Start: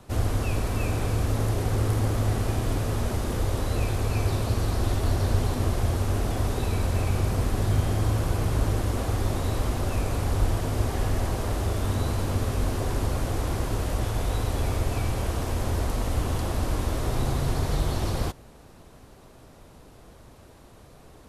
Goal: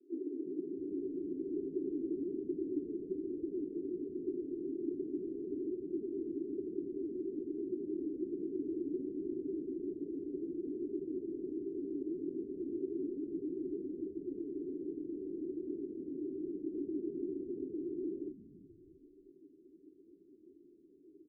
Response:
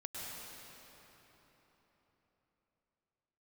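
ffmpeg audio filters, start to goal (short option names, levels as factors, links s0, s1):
-filter_complex "[0:a]flanger=delay=0.2:depth=9.7:regen=39:speed=1.2:shape=triangular,asuperpass=centerf=330:order=8:qfactor=2.7,asplit=2[s0][s1];[s1]asplit=3[s2][s3][s4];[s2]adelay=328,afreqshift=-110,volume=0.119[s5];[s3]adelay=656,afreqshift=-220,volume=0.038[s6];[s4]adelay=984,afreqshift=-330,volume=0.0122[s7];[s5][s6][s7]amix=inputs=3:normalize=0[s8];[s0][s8]amix=inputs=2:normalize=0,volume=1.58"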